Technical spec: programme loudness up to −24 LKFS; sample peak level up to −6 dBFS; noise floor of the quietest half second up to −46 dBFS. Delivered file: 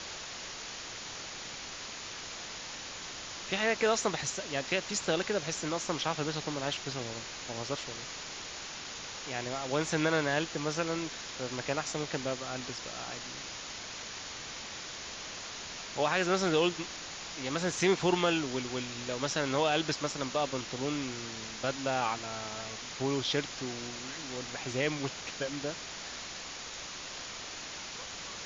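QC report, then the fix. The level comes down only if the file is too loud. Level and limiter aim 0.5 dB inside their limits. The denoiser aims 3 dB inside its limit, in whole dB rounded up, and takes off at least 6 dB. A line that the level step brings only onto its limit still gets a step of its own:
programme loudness −34.0 LKFS: in spec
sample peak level −14.0 dBFS: in spec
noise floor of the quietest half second −43 dBFS: out of spec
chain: broadband denoise 6 dB, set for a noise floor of −43 dBFS

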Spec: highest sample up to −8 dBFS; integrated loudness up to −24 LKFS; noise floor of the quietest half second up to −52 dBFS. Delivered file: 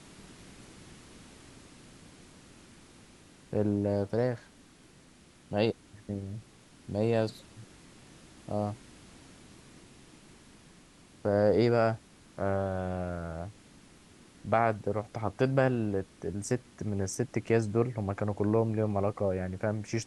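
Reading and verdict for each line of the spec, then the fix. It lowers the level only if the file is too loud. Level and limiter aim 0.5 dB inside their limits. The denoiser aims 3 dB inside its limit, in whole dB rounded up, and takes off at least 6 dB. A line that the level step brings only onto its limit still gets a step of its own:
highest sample −11.0 dBFS: in spec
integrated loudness −31.0 LKFS: in spec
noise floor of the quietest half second −58 dBFS: in spec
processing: no processing needed

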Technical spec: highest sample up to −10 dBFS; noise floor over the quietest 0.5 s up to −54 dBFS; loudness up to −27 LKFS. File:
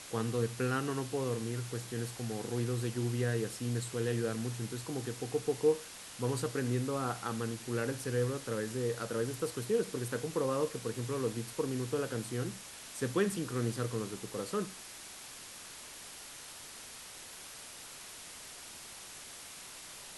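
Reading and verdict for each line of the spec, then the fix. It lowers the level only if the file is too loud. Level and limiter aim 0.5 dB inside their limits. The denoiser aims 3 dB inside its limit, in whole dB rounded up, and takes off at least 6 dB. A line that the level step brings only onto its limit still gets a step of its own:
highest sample −17.0 dBFS: in spec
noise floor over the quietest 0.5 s −49 dBFS: out of spec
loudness −36.5 LKFS: in spec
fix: broadband denoise 8 dB, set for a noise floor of −49 dBFS

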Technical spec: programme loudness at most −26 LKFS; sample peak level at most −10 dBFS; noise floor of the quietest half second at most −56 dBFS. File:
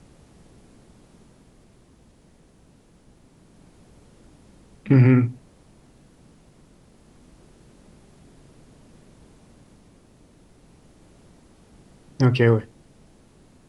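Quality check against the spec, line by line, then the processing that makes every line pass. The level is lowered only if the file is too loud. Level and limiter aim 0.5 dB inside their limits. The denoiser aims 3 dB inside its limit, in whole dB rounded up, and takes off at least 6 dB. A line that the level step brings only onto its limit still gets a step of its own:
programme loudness −19.0 LKFS: out of spec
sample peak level −5.5 dBFS: out of spec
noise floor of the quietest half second −55 dBFS: out of spec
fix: level −7.5 dB

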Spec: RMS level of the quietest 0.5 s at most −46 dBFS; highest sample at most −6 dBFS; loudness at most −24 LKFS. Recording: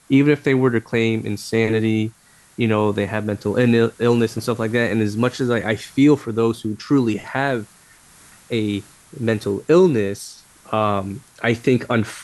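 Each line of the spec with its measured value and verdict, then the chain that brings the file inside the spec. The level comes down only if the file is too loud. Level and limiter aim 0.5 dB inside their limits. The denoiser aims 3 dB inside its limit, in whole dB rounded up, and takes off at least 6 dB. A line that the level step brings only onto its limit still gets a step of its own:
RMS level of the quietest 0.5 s −50 dBFS: in spec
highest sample −5.0 dBFS: out of spec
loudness −19.5 LKFS: out of spec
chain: level −5 dB

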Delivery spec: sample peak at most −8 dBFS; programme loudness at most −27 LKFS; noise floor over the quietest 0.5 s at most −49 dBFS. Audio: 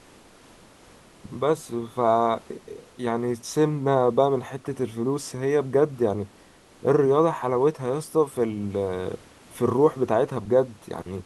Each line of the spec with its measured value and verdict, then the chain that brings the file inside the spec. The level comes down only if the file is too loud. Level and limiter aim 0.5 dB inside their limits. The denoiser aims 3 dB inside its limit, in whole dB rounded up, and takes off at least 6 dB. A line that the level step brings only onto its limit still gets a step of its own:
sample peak −6.0 dBFS: out of spec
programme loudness −24.5 LKFS: out of spec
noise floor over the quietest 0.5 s −53 dBFS: in spec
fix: level −3 dB

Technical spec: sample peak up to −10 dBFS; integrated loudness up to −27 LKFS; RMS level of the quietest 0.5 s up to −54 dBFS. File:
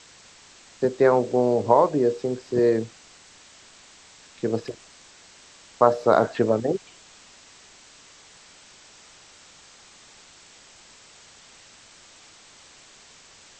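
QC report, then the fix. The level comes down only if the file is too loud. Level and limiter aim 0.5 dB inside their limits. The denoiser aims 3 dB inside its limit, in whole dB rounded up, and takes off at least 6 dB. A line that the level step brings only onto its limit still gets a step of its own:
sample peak −3.0 dBFS: out of spec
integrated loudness −22.0 LKFS: out of spec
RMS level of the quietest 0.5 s −51 dBFS: out of spec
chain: level −5.5 dB
brickwall limiter −10.5 dBFS

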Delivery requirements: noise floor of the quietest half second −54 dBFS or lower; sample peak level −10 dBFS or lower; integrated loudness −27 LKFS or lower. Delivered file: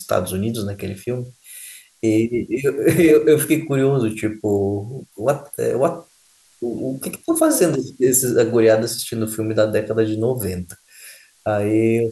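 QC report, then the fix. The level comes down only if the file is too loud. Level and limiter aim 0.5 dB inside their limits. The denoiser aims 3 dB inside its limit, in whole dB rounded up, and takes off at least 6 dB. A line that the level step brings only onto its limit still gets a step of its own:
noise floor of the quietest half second −55 dBFS: in spec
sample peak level −4.0 dBFS: out of spec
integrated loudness −19.5 LKFS: out of spec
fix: level −8 dB

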